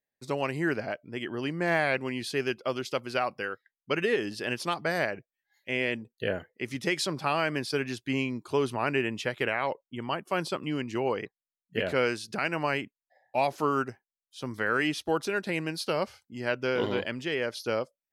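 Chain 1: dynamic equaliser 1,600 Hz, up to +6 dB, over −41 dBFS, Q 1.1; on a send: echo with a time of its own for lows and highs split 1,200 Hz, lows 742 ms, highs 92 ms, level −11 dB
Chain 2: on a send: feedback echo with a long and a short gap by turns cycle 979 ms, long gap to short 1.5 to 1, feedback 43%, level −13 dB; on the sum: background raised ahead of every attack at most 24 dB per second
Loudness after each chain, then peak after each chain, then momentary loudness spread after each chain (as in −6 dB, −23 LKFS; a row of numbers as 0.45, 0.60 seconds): −27.5, −28.0 LKFS; −9.5, −12.5 dBFS; 9, 6 LU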